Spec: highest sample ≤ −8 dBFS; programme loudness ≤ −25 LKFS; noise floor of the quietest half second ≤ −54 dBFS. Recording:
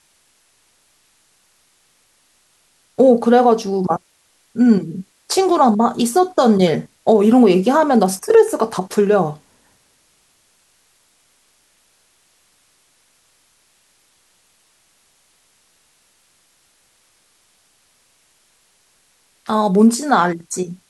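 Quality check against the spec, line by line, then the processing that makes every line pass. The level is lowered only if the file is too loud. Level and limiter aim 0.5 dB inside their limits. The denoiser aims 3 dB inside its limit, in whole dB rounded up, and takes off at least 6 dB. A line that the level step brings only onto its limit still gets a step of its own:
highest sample −2.5 dBFS: out of spec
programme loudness −15.5 LKFS: out of spec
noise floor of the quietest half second −59 dBFS: in spec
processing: level −10 dB

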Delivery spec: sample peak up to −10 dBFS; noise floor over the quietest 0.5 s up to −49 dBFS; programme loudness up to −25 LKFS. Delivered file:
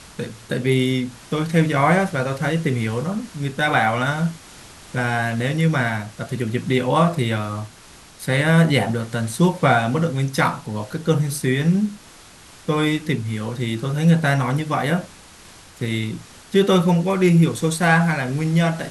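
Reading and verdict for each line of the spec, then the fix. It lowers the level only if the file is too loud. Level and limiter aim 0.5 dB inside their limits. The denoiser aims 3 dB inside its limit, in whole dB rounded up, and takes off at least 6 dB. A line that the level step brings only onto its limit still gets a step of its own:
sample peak −2.5 dBFS: out of spec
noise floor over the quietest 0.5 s −45 dBFS: out of spec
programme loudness −20.5 LKFS: out of spec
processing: level −5 dB
brickwall limiter −10.5 dBFS

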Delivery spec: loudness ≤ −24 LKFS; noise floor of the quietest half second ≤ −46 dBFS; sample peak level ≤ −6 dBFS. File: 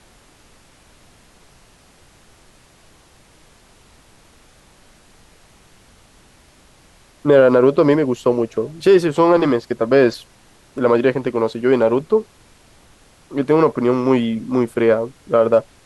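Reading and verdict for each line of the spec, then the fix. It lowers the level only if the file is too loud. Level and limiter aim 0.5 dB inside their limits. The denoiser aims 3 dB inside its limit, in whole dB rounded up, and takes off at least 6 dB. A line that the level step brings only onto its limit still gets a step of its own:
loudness −16.5 LKFS: out of spec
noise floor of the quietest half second −50 dBFS: in spec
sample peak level −3.5 dBFS: out of spec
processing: level −8 dB

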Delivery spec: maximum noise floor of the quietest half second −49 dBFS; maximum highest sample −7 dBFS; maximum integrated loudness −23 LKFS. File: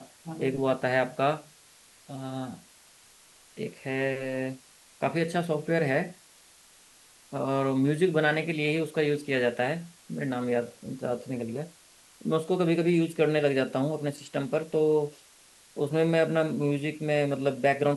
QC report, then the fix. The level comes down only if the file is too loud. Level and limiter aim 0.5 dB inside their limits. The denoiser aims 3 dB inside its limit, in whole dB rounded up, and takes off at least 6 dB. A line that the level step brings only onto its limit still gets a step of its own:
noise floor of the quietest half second −57 dBFS: in spec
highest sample −10.5 dBFS: in spec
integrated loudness −28.0 LKFS: in spec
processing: no processing needed

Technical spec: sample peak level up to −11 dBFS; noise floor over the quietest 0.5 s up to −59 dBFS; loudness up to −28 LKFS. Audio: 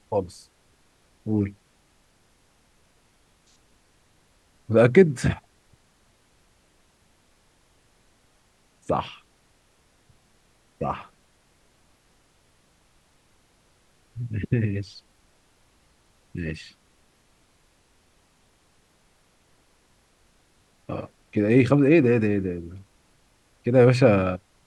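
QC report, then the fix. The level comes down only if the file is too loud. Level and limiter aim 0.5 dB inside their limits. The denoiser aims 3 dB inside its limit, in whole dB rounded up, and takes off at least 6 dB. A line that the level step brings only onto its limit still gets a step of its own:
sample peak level −2.5 dBFS: out of spec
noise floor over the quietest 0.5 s −62 dBFS: in spec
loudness −22.5 LKFS: out of spec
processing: level −6 dB
brickwall limiter −11.5 dBFS

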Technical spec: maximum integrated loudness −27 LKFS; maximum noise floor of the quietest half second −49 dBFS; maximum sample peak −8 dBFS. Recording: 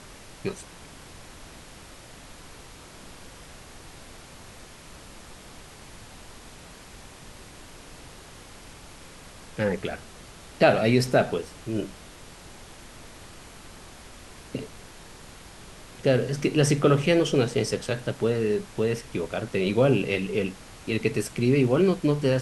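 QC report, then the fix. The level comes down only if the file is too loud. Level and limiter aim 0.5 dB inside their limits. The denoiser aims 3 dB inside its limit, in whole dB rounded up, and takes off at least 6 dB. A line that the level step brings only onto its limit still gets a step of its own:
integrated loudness −25.0 LKFS: out of spec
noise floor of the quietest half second −46 dBFS: out of spec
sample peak −6.0 dBFS: out of spec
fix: broadband denoise 6 dB, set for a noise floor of −46 dBFS
level −2.5 dB

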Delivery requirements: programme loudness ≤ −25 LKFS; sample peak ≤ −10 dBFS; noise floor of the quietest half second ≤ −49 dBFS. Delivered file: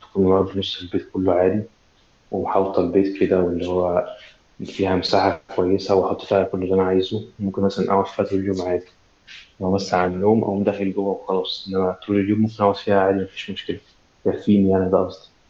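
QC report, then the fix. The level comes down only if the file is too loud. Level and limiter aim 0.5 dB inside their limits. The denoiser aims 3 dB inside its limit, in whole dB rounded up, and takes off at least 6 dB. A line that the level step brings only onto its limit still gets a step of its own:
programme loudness −21.0 LKFS: out of spec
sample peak −4.0 dBFS: out of spec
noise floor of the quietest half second −57 dBFS: in spec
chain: level −4.5 dB
brickwall limiter −10.5 dBFS

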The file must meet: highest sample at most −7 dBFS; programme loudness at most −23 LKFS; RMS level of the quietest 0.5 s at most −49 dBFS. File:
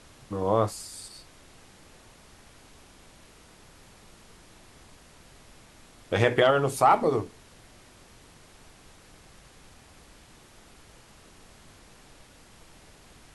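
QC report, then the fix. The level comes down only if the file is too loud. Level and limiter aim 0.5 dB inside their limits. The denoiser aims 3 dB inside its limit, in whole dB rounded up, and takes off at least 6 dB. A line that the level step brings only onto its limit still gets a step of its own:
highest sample −8.0 dBFS: in spec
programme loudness −24.5 LKFS: in spec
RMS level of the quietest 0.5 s −53 dBFS: in spec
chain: no processing needed

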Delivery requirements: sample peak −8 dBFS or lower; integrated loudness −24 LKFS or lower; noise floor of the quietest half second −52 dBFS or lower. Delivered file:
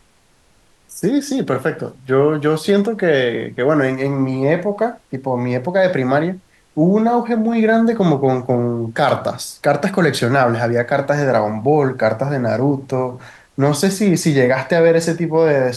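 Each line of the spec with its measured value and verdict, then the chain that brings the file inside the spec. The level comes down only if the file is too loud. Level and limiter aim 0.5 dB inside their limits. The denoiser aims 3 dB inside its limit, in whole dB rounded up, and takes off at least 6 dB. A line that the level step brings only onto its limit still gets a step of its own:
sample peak −4.0 dBFS: out of spec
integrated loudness −17.0 LKFS: out of spec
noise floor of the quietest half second −55 dBFS: in spec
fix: level −7.5 dB

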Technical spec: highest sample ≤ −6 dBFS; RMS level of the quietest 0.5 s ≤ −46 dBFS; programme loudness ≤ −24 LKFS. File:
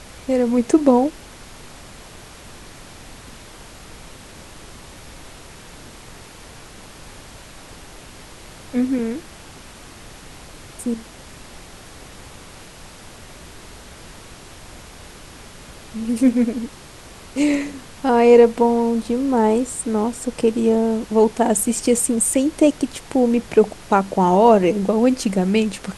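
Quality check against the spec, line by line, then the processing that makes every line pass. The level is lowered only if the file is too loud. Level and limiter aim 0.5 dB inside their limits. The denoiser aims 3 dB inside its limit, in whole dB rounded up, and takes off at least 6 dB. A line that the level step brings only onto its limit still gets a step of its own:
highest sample −2.0 dBFS: out of spec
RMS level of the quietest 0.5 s −41 dBFS: out of spec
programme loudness −18.5 LKFS: out of spec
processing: level −6 dB

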